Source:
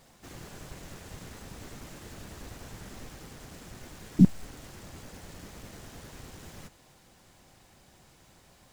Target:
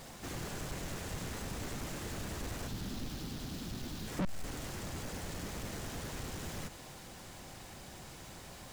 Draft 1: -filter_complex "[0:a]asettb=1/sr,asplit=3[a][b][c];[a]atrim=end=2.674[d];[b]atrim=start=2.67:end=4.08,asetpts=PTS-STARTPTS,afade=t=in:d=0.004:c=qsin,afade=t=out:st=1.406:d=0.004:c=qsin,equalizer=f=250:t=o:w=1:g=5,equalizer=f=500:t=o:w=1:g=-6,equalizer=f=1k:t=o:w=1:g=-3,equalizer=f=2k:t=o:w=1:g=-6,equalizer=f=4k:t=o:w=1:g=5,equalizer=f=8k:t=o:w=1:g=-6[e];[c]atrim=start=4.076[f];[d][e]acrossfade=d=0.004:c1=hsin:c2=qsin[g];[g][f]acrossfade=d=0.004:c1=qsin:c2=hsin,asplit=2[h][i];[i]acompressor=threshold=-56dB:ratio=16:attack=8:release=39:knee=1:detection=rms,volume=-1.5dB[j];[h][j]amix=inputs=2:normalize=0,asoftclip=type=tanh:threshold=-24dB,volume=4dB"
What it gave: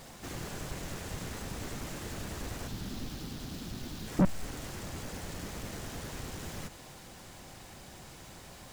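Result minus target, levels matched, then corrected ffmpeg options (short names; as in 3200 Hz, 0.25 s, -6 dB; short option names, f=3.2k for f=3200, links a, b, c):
soft clip: distortion -6 dB
-filter_complex "[0:a]asettb=1/sr,asplit=3[a][b][c];[a]atrim=end=2.674[d];[b]atrim=start=2.67:end=4.08,asetpts=PTS-STARTPTS,afade=t=in:d=0.004:c=qsin,afade=t=out:st=1.406:d=0.004:c=qsin,equalizer=f=250:t=o:w=1:g=5,equalizer=f=500:t=o:w=1:g=-6,equalizer=f=1k:t=o:w=1:g=-3,equalizer=f=2k:t=o:w=1:g=-6,equalizer=f=4k:t=o:w=1:g=5,equalizer=f=8k:t=o:w=1:g=-6[e];[c]atrim=start=4.076[f];[d][e]acrossfade=d=0.004:c1=hsin:c2=qsin[g];[g][f]acrossfade=d=0.004:c1=qsin:c2=hsin,asplit=2[h][i];[i]acompressor=threshold=-56dB:ratio=16:attack=8:release=39:knee=1:detection=rms,volume=-1.5dB[j];[h][j]amix=inputs=2:normalize=0,asoftclip=type=tanh:threshold=-35dB,volume=4dB"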